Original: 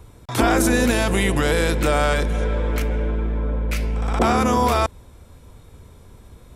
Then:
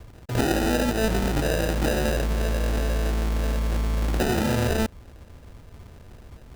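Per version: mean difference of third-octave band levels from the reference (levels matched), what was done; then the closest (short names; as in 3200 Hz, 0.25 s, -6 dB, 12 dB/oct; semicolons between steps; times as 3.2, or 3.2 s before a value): 6.0 dB: compressor 4:1, threshold -20 dBFS, peak gain reduction 6.5 dB; sample-and-hold 40×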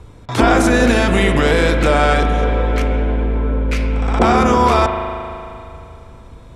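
4.5 dB: air absorption 63 m; spring tank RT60 2.7 s, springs 38 ms, chirp 75 ms, DRR 5 dB; gain +5 dB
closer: second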